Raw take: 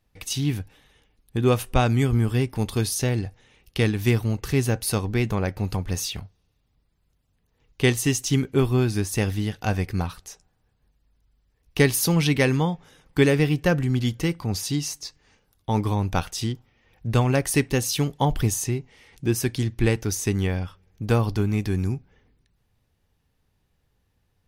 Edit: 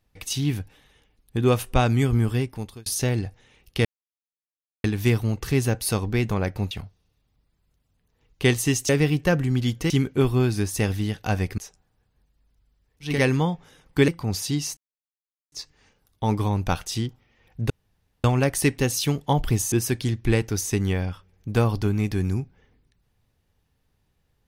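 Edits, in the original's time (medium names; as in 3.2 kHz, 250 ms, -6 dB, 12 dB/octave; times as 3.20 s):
2.28–2.86 s: fade out
3.85 s: insert silence 0.99 s
5.72–6.10 s: delete
9.96–10.24 s: delete
11.78–12.32 s: delete, crossfade 0.24 s
13.28–14.29 s: move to 8.28 s
14.98 s: insert silence 0.75 s
17.16 s: insert room tone 0.54 s
18.64–19.26 s: delete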